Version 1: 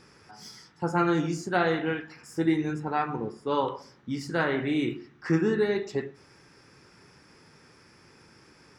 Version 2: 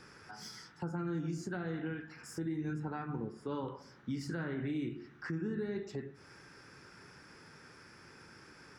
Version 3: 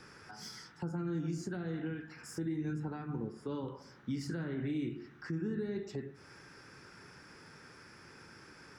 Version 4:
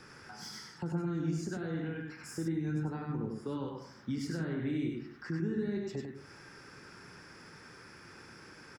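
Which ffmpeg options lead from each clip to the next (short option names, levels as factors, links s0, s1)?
-filter_complex "[0:a]equalizer=f=1500:w=3:g=6.5,acrossover=split=300[s0][s1];[s1]acompressor=threshold=0.00708:ratio=3[s2];[s0][s2]amix=inputs=2:normalize=0,alimiter=level_in=1.5:limit=0.0631:level=0:latency=1:release=144,volume=0.668,volume=0.841"
-filter_complex "[0:a]acrossover=split=490|3000[s0][s1][s2];[s1]acompressor=threshold=0.00282:ratio=2.5[s3];[s0][s3][s2]amix=inputs=3:normalize=0,volume=1.12"
-af "aecho=1:1:98:0.631,volume=1.12"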